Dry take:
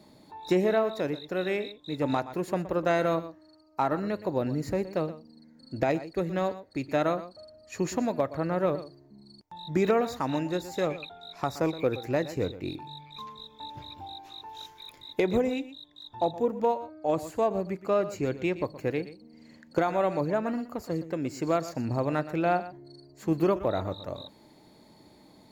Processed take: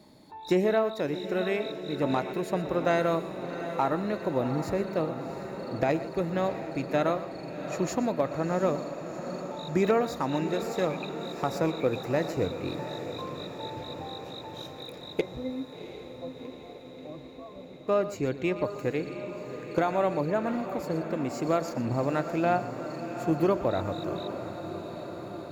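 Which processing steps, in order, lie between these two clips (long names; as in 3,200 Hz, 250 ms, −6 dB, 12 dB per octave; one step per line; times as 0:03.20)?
0:15.21–0:17.88: resonances in every octave C, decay 0.17 s
feedback delay with all-pass diffusion 723 ms, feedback 71%, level −10 dB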